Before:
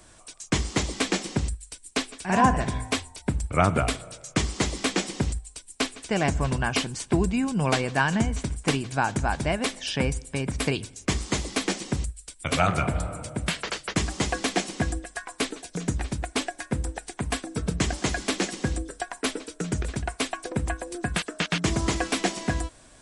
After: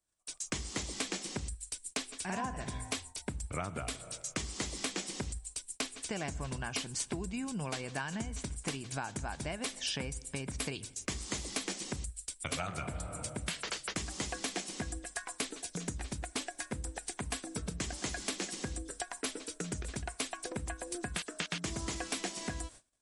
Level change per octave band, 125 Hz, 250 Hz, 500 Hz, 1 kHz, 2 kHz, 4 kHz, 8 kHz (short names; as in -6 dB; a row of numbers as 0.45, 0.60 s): -13.5, -13.0, -13.0, -14.0, -11.5, -8.5, -5.0 dB